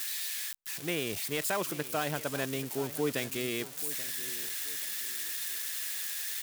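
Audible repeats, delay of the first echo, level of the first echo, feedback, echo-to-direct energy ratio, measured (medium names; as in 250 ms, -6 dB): 2, 832 ms, -15.5 dB, 31%, -15.0 dB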